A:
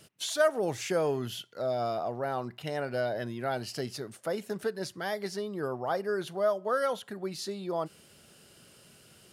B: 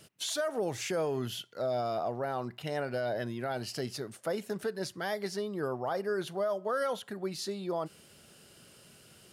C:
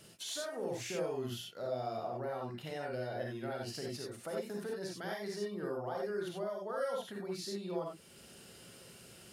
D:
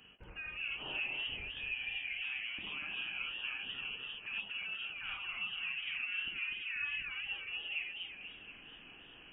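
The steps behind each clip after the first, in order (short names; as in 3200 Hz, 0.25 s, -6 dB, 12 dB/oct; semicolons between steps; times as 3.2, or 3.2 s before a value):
limiter -23.5 dBFS, peak gain reduction 10.5 dB
compressor 1.5:1, threshold -53 dBFS, peak gain reduction 9 dB; reverb, pre-delay 33 ms, DRR -1.5 dB; gain -1.5 dB
inverted band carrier 3100 Hz; dynamic EQ 1800 Hz, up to -4 dB, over -50 dBFS, Q 0.74; warbling echo 0.241 s, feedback 54%, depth 199 cents, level -5.5 dB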